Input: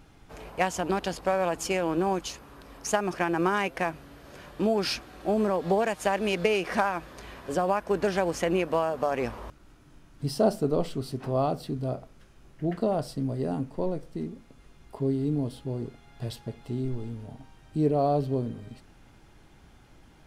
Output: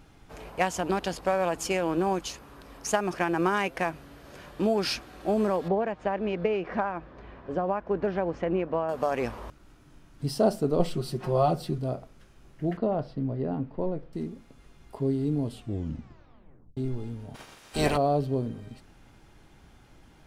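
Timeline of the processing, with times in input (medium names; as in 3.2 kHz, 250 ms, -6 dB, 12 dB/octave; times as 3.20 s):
5.68–8.89 s: tape spacing loss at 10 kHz 38 dB
10.79–11.78 s: comb 5.6 ms, depth 91%
12.77–14.13 s: distance through air 320 m
15.45 s: tape stop 1.32 s
17.34–17.96 s: spectral peaks clipped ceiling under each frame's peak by 30 dB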